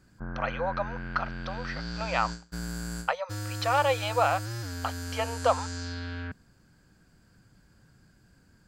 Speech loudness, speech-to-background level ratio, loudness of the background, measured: -30.5 LUFS, 6.5 dB, -37.0 LUFS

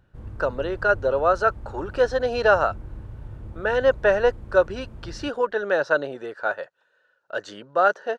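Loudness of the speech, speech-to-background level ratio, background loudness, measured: -23.0 LUFS, 17.5 dB, -40.5 LUFS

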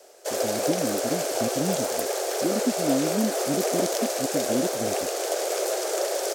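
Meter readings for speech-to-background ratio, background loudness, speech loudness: -4.0 dB, -26.5 LUFS, -30.5 LUFS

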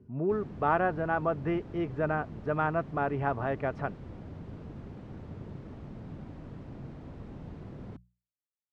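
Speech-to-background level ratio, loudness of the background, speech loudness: 14.0 dB, -45.0 LUFS, -31.0 LUFS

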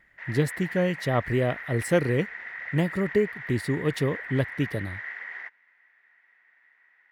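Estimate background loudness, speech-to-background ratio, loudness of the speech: -36.5 LUFS, 9.0 dB, -27.5 LUFS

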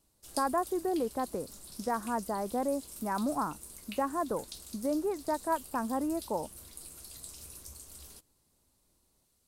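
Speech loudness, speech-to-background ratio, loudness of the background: -34.0 LUFS, 12.0 dB, -46.0 LUFS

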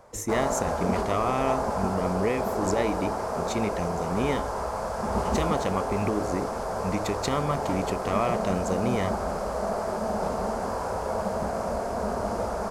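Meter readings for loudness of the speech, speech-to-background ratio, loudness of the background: -30.0 LUFS, -0.5 dB, -29.5 LUFS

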